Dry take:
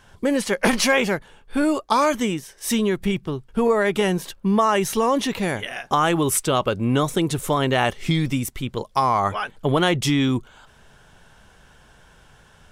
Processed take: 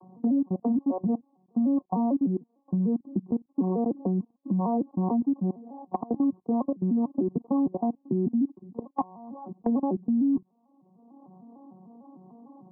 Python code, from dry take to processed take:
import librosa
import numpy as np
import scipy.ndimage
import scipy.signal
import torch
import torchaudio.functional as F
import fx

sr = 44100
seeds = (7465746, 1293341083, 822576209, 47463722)

y = fx.vocoder_arp(x, sr, chord='major triad', root=54, every_ms=150)
y = fx.low_shelf(y, sr, hz=320.0, db=5.5)
y = fx.level_steps(y, sr, step_db=23)
y = scipy.signal.sosfilt(scipy.signal.cheby1(6, 9, 1100.0, 'lowpass', fs=sr, output='sos'), y)
y = fx.band_squash(y, sr, depth_pct=70)
y = F.gain(torch.from_numpy(y), 2.0).numpy()